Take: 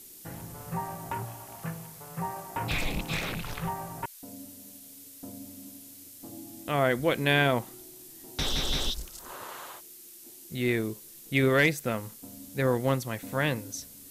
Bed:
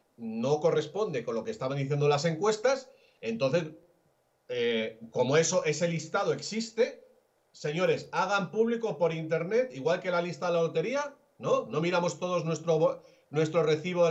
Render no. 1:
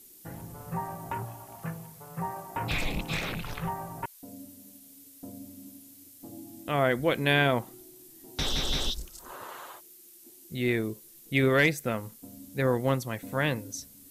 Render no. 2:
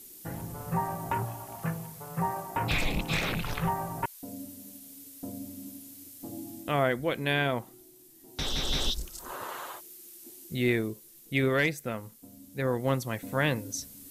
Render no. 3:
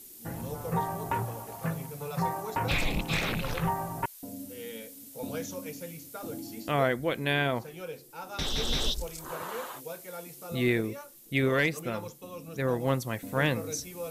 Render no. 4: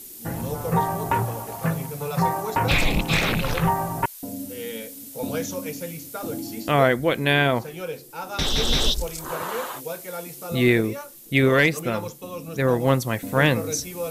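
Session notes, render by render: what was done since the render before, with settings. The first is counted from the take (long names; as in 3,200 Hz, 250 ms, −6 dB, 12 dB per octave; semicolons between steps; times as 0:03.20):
broadband denoise 6 dB, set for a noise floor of −49 dBFS
speech leveller within 4 dB 0.5 s
mix in bed −13.5 dB
level +8 dB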